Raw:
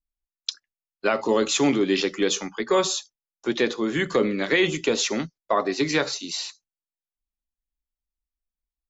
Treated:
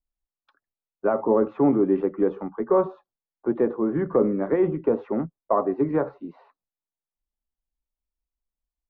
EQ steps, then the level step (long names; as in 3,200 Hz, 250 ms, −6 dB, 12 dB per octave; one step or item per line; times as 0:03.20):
low-pass filter 1,100 Hz 24 dB per octave
+1.5 dB